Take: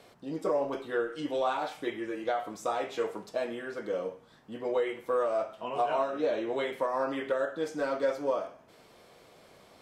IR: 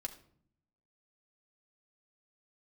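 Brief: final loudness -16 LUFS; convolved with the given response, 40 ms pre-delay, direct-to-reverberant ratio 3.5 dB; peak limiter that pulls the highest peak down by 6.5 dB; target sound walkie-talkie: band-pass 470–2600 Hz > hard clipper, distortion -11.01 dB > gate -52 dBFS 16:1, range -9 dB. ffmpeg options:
-filter_complex "[0:a]alimiter=level_in=1.12:limit=0.0631:level=0:latency=1,volume=0.891,asplit=2[s0][s1];[1:a]atrim=start_sample=2205,adelay=40[s2];[s1][s2]afir=irnorm=-1:irlink=0,volume=0.841[s3];[s0][s3]amix=inputs=2:normalize=0,highpass=470,lowpass=2600,asoftclip=type=hard:threshold=0.0251,agate=range=0.355:threshold=0.00251:ratio=16,volume=11.9"

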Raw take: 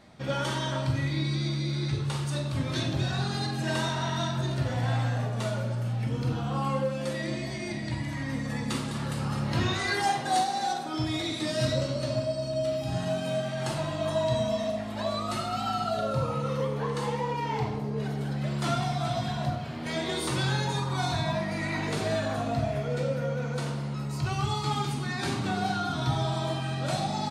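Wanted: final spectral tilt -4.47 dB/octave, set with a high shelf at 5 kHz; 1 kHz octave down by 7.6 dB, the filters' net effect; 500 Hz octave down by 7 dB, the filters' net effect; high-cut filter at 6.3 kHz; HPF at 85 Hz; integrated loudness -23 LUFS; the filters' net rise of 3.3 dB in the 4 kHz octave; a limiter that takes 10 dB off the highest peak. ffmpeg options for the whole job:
-af "highpass=85,lowpass=6300,equalizer=f=500:t=o:g=-6,equalizer=f=1000:t=o:g=-8.5,equalizer=f=4000:t=o:g=7.5,highshelf=f=5000:g=-6.5,volume=3.76,alimiter=limit=0.178:level=0:latency=1"

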